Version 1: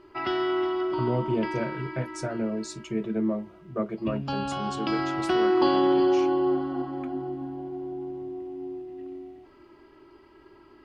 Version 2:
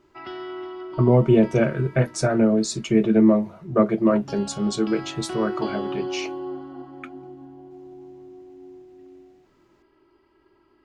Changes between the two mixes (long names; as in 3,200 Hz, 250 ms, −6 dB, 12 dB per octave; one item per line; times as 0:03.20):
speech +11.0 dB
background −8.0 dB